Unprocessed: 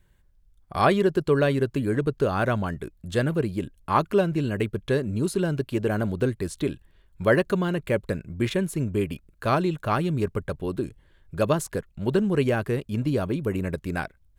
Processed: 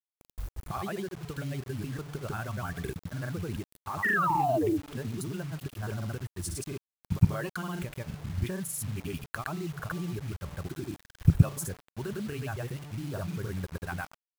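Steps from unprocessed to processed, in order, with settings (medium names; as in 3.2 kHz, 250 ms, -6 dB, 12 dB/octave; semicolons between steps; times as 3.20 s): fade out at the end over 1.45 s; recorder AGC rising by 58 dB/s; high-pass 55 Hz 12 dB/octave; band-stop 1 kHz, Q 15; reverb removal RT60 0.93 s; graphic EQ 250/500/2000/4000/8000 Hz -9/-12/-7/-8/-6 dB; level held to a coarse grid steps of 20 dB; painted sound fall, 4.10–4.74 s, 270–2000 Hz -32 dBFS; de-hum 145.5 Hz, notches 9; granulator 100 ms, grains 20 per s, pitch spread up and down by 0 st; bit crusher 9-bit; trim +7 dB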